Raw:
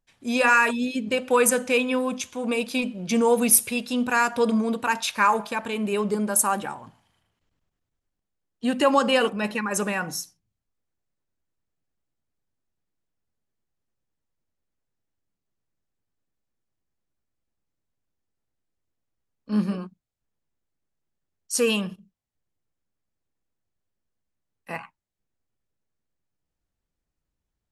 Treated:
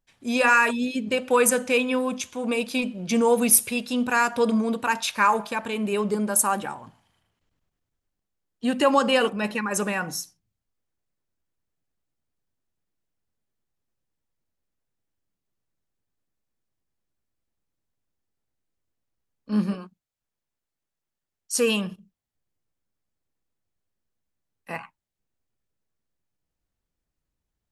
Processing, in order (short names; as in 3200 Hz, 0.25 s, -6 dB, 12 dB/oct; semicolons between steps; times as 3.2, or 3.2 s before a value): 19.74–21.56 low shelf 440 Hz -7.5 dB